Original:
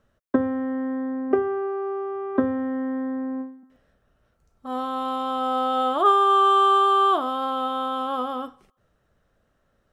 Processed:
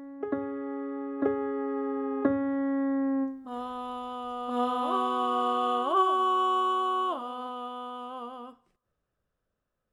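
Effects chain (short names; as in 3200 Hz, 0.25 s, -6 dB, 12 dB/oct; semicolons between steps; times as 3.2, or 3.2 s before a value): Doppler pass-by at 3.64, 20 m/s, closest 15 m; reverse echo 1.027 s -6.5 dB; gain +3 dB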